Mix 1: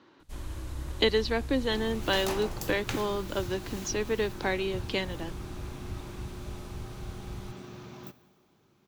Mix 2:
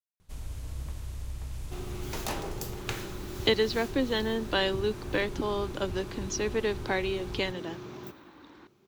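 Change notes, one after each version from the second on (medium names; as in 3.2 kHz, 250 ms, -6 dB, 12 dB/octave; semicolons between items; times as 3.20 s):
speech: entry +2.45 s; second sound: add peaking EQ 400 Hz +10 dB 0.25 oct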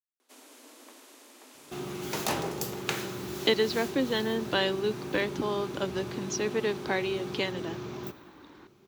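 first sound: add steep high-pass 240 Hz 96 dB/octave; second sound +4.5 dB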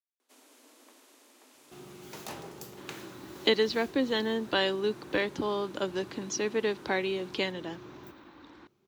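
first sound -6.0 dB; second sound -11.5 dB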